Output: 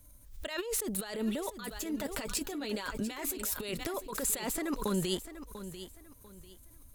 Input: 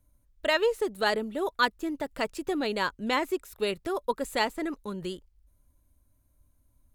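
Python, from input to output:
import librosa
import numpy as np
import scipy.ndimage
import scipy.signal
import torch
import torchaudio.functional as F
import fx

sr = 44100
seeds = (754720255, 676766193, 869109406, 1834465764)

y = fx.high_shelf(x, sr, hz=2900.0, db=9.5)
y = fx.over_compress(y, sr, threshold_db=-36.0, ratio=-1.0)
y = fx.notch_comb(y, sr, f0_hz=170.0, at=(1.46, 3.58))
y = fx.echo_feedback(y, sr, ms=694, feedback_pct=28, wet_db=-12.5)
y = fx.pre_swell(y, sr, db_per_s=91.0)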